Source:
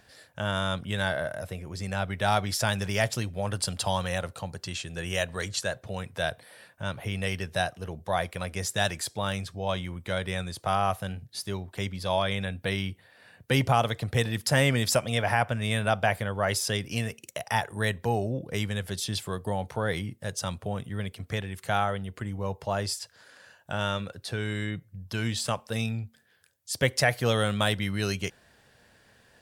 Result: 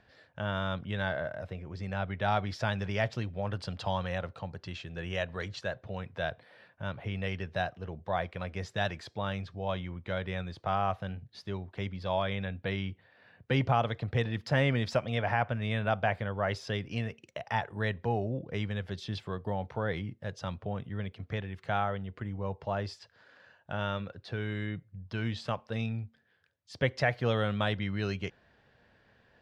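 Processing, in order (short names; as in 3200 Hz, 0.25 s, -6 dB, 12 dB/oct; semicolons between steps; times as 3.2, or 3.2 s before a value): air absorption 230 m; gain -3 dB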